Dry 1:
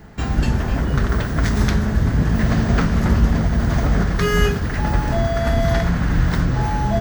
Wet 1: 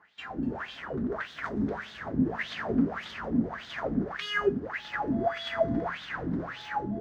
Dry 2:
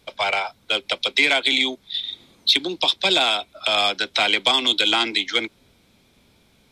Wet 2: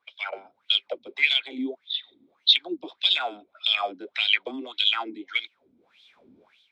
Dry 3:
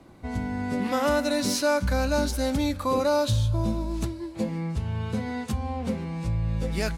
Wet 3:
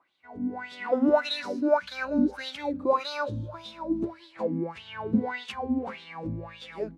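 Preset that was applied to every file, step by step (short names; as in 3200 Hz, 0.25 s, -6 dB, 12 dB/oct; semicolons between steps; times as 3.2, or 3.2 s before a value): AGC gain up to 15.5 dB; wah 1.7 Hz 250–3600 Hz, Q 6.4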